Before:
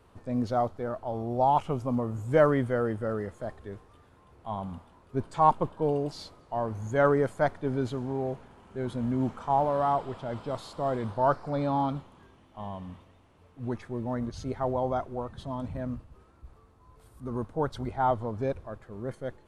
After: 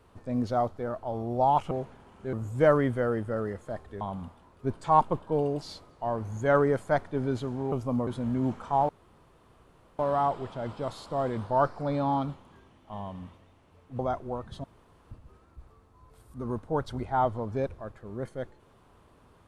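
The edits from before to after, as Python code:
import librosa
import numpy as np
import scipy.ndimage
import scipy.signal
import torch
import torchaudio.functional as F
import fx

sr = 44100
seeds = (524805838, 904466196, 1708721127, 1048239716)

y = fx.edit(x, sr, fx.swap(start_s=1.71, length_s=0.35, other_s=8.22, other_length_s=0.62),
    fx.cut(start_s=3.74, length_s=0.77),
    fx.insert_room_tone(at_s=9.66, length_s=1.1),
    fx.cut(start_s=13.66, length_s=1.19),
    fx.room_tone_fill(start_s=15.5, length_s=0.47), tone=tone)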